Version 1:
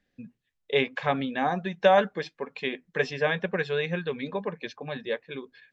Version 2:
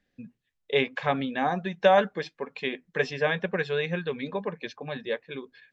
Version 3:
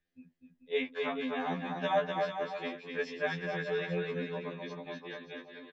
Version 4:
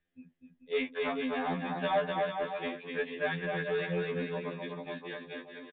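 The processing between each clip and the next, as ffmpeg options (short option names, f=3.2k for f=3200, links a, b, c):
-af anull
-filter_complex "[0:a]asplit=2[a][b];[b]aecho=0:1:250|437.5|578.1|683.6|762.7:0.631|0.398|0.251|0.158|0.1[c];[a][c]amix=inputs=2:normalize=0,afftfilt=real='re*2*eq(mod(b,4),0)':imag='im*2*eq(mod(b,4),0)':win_size=2048:overlap=0.75,volume=-7.5dB"
-filter_complex "[0:a]asplit=2[a][b];[b]volume=31.5dB,asoftclip=hard,volume=-31.5dB,volume=-3dB[c];[a][c]amix=inputs=2:normalize=0,aresample=8000,aresample=44100,volume=-2.5dB"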